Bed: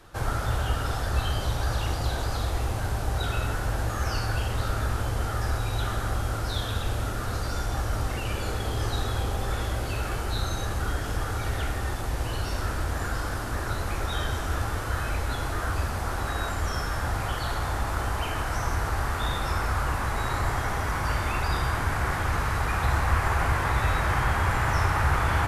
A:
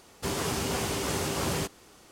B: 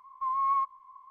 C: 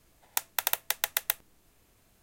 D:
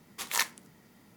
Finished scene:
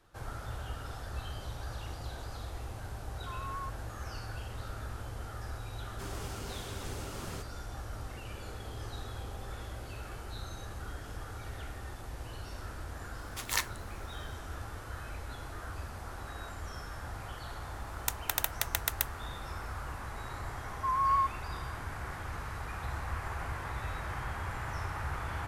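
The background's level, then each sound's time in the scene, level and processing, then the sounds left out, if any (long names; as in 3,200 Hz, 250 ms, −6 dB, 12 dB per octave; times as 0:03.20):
bed −13.5 dB
0:03.05: mix in B −14.5 dB
0:05.76: mix in A −14 dB
0:13.18: mix in D −3 dB
0:17.71: mix in C −3.5 dB
0:20.62: mix in B −0.5 dB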